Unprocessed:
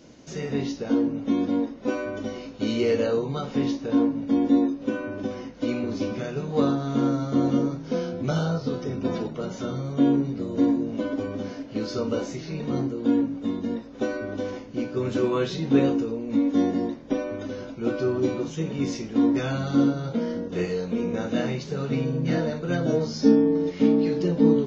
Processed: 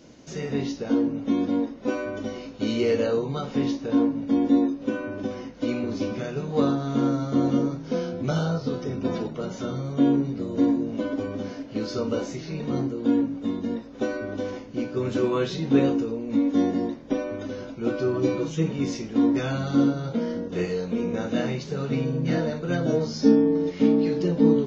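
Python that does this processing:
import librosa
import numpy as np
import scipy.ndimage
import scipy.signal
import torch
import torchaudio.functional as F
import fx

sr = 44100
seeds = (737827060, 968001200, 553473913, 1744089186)

y = fx.comb(x, sr, ms=6.2, depth=0.71, at=(18.13, 18.71))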